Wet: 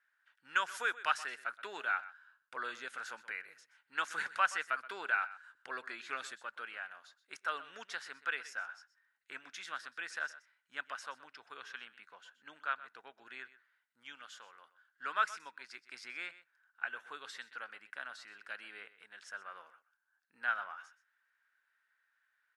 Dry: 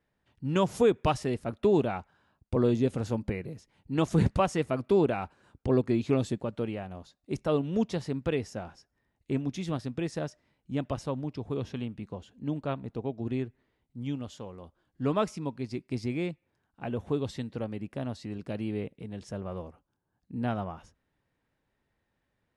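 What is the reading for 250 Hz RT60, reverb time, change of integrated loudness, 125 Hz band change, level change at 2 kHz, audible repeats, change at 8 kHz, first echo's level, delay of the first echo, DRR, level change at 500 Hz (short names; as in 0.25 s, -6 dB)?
none, none, -8.5 dB, under -40 dB, +8.0 dB, 1, -3.5 dB, -16.5 dB, 0.125 s, none, -22.5 dB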